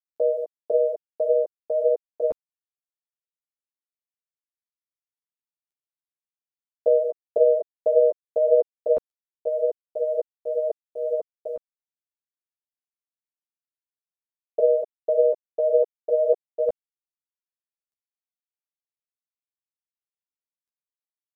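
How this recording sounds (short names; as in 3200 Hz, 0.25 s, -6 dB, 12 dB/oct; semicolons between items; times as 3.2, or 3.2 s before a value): tremolo triangle 1.8 Hz, depth 75%; a quantiser's noise floor 12-bit, dither none; a shimmering, thickened sound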